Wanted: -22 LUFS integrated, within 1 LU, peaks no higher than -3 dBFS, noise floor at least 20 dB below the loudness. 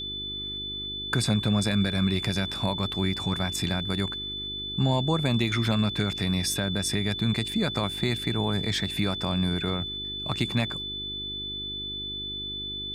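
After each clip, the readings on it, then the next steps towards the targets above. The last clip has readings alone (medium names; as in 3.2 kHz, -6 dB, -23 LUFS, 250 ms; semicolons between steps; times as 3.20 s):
hum 50 Hz; highest harmonic 400 Hz; hum level -42 dBFS; steady tone 3.5 kHz; tone level -32 dBFS; loudness -27.5 LUFS; peak level -12.0 dBFS; loudness target -22.0 LUFS
-> de-hum 50 Hz, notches 8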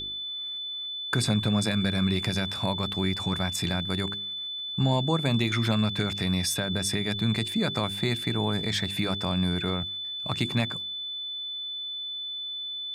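hum not found; steady tone 3.5 kHz; tone level -32 dBFS
-> band-stop 3.5 kHz, Q 30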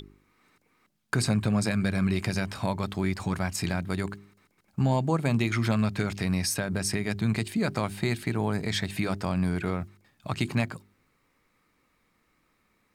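steady tone not found; loudness -28.5 LUFS; peak level -12.5 dBFS; loudness target -22.0 LUFS
-> trim +6.5 dB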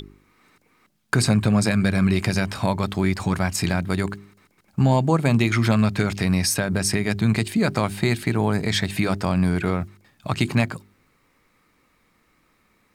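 loudness -22.0 LUFS; peak level -6.0 dBFS; noise floor -64 dBFS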